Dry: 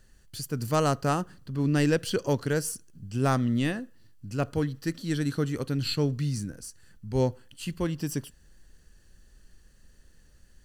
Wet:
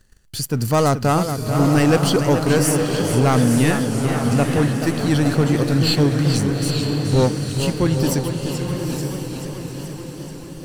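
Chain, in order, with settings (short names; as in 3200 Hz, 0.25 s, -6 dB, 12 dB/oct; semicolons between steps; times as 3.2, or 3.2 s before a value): sample leveller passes 2; diffused feedback echo 0.912 s, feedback 45%, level -6 dB; warbling echo 0.433 s, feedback 70%, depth 116 cents, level -9 dB; gain +3.5 dB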